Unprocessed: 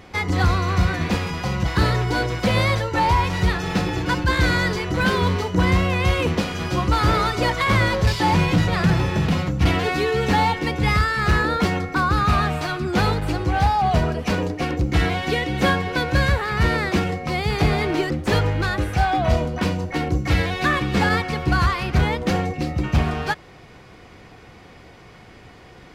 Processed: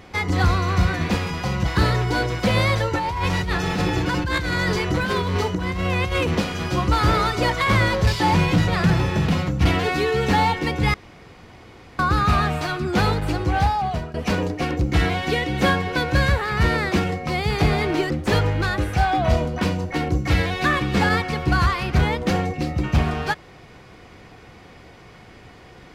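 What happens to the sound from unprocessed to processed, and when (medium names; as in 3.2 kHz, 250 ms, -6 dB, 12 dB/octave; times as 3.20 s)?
2.80–6.38 s: compressor with a negative ratio -22 dBFS
10.94–11.99 s: room tone
13.58–14.14 s: fade out linear, to -16 dB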